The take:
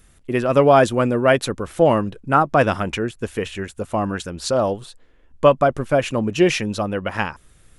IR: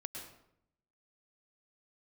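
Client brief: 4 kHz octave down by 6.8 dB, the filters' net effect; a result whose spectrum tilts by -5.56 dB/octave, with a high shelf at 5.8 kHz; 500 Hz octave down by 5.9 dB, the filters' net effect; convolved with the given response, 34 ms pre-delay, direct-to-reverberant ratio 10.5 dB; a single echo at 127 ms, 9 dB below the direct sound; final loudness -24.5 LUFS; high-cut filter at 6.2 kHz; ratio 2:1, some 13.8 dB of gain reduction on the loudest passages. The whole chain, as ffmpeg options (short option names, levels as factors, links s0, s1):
-filter_complex "[0:a]lowpass=6200,equalizer=f=500:t=o:g=-7.5,equalizer=f=4000:t=o:g=-7.5,highshelf=f=5800:g=-4.5,acompressor=threshold=0.0112:ratio=2,aecho=1:1:127:0.355,asplit=2[s0][s1];[1:a]atrim=start_sample=2205,adelay=34[s2];[s1][s2]afir=irnorm=-1:irlink=0,volume=0.355[s3];[s0][s3]amix=inputs=2:normalize=0,volume=3.16"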